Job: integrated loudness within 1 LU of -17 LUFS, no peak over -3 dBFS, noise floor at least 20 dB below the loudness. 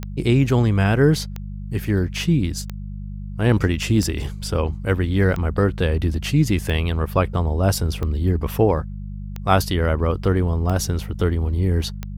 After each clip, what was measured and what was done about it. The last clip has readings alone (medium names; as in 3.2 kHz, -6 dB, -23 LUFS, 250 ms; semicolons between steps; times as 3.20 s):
clicks found 10; hum 50 Hz; highest harmonic 200 Hz; hum level -29 dBFS; loudness -21.0 LUFS; peak level -3.0 dBFS; loudness target -17.0 LUFS
-> de-click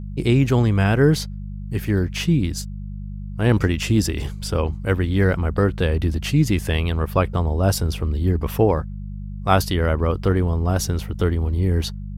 clicks found 0; hum 50 Hz; highest harmonic 200 Hz; hum level -29 dBFS
-> de-hum 50 Hz, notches 4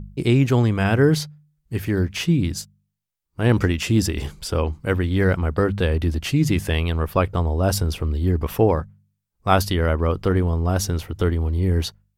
hum not found; loudness -21.5 LUFS; peak level -3.0 dBFS; loudness target -17.0 LUFS
-> trim +4.5 dB; peak limiter -3 dBFS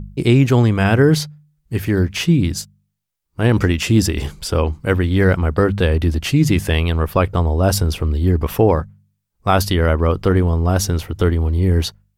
loudness -17.0 LUFS; peak level -3.0 dBFS; noise floor -72 dBFS